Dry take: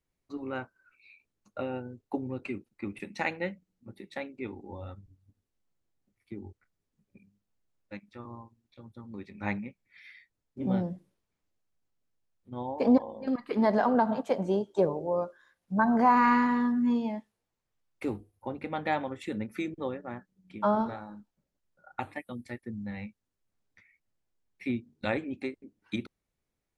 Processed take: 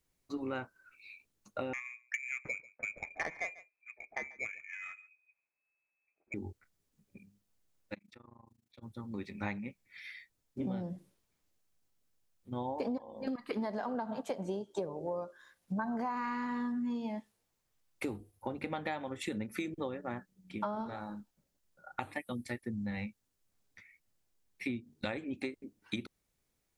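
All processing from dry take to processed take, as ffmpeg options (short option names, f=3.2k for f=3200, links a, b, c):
-filter_complex "[0:a]asettb=1/sr,asplit=3[a][b][c];[a]atrim=end=1.734[d];[b]atrim=start=1.73:end=6.34,asetpts=PTS-STARTPTS,afade=t=in:d=0.004:c=qsin,afade=t=out:st=4.606:d=0.004:c=qsin,lowpass=f=2.2k:t=q:w=0.5098,lowpass=f=2.2k:t=q:w=0.6013,lowpass=f=2.2k:t=q:w=0.9,lowpass=f=2.2k:t=q:w=2.563,afreqshift=-2600,adynamicsmooth=sensitivity=1.5:basefreq=1.5k,aecho=1:1:141:0.075,atrim=end_sample=203301[e];[c]atrim=start=6.336[f];[d][e]acrossfade=d=0.004:c1=hsin:c2=qsin[g];[g][f]acrossfade=d=0.004:c1=qsin:c2=hsin,asettb=1/sr,asplit=3[h][i][j];[h]atrim=end=7.944[k];[i]atrim=start=7.94:end=8.83,asetpts=PTS-STARTPTS,afade=t=in:d=0.004:c=qsin,afade=t=out:st=0.886:d=0.004:c=qsin,highpass=57,acompressor=threshold=-51dB:ratio=6:attack=3.2:release=140:knee=1:detection=peak,tremolo=f=26:d=0.947[l];[j]atrim=start=8.826[m];[k][l]acrossfade=d=0.004:c1=hsin:c2=qsin[n];[n][m]acrossfade=d=0.004:c1=qsin:c2=hsin,highshelf=f=3.9k:g=7.5,acompressor=threshold=-35dB:ratio=12,volume=2dB"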